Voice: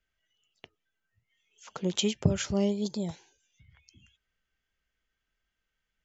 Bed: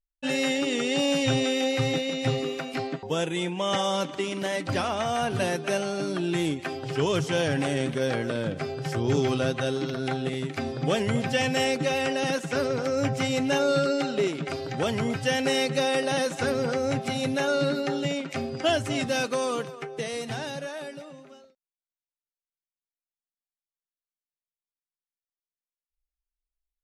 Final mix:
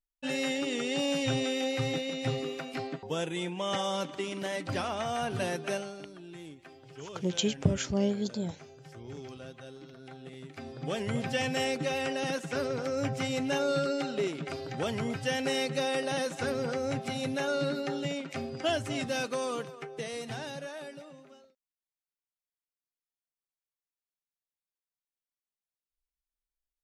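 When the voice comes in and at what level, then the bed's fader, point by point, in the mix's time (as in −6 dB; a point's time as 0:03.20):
5.40 s, −1.0 dB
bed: 0:05.72 −5.5 dB
0:06.11 −19.5 dB
0:10.06 −19.5 dB
0:11.18 −5.5 dB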